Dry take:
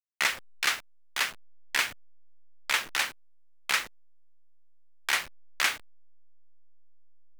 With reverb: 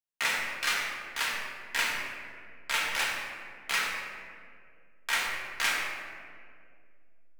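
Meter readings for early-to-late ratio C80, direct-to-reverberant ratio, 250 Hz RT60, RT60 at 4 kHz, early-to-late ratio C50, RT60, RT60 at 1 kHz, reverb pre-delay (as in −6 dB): 2.0 dB, −4.5 dB, 2.7 s, 1.1 s, 0.0 dB, 2.2 s, 1.8 s, 4 ms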